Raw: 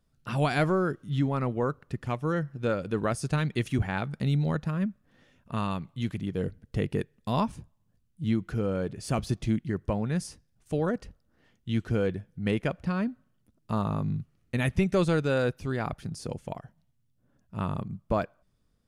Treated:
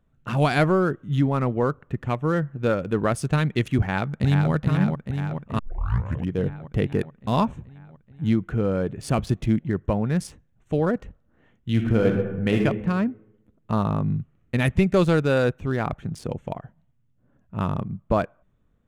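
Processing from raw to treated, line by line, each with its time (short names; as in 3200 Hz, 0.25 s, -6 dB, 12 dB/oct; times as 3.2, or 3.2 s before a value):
3.8–4.52 echo throw 0.43 s, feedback 70%, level -4.5 dB
5.59 tape start 0.73 s
11.7–12.6 reverb throw, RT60 1.1 s, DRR 1 dB
whole clip: Wiener smoothing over 9 samples; gain +5.5 dB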